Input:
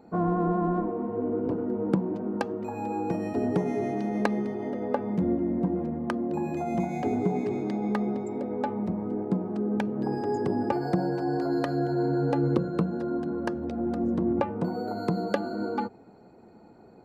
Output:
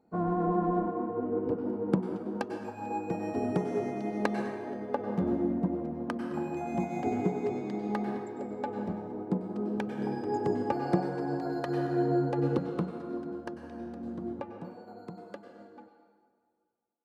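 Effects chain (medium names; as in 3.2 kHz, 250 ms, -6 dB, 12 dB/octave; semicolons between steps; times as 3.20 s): fade out at the end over 5.24 s; on a send at -2 dB: high-pass 310 Hz 12 dB/octave + reverberation RT60 1.9 s, pre-delay 88 ms; on the sum: upward expansion 1.5:1, over -47 dBFS; trim -1.5 dB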